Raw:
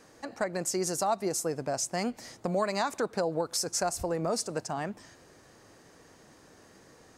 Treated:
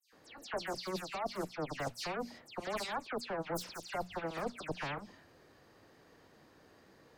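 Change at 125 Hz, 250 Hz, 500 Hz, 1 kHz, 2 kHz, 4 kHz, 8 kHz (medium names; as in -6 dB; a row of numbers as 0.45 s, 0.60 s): -8.0 dB, -9.0 dB, -9.0 dB, -7.0 dB, -3.0 dB, -6.5 dB, -18.5 dB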